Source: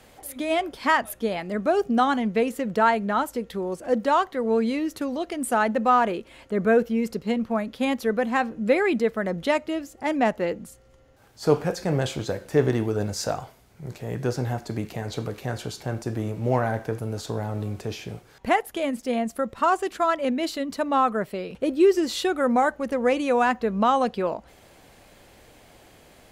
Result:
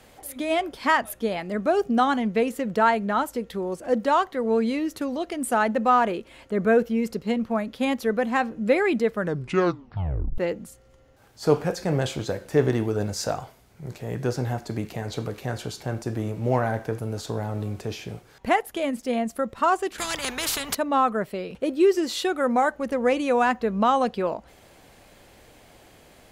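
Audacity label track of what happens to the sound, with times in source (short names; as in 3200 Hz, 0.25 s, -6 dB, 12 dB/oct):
9.130000	9.130000	tape stop 1.25 s
19.980000	20.750000	spectral compressor 4:1
21.590000	22.740000	low shelf 150 Hz -7.5 dB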